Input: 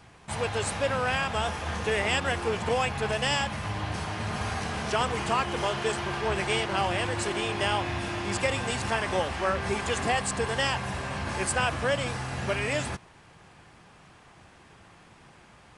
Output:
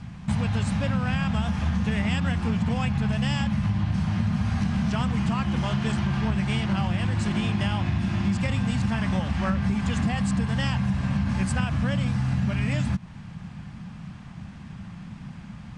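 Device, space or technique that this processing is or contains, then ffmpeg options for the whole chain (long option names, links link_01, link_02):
jukebox: -af "lowpass=7000,lowshelf=frequency=280:width_type=q:width=3:gain=11.5,acompressor=threshold=-25dB:ratio=6,volume=3.5dB"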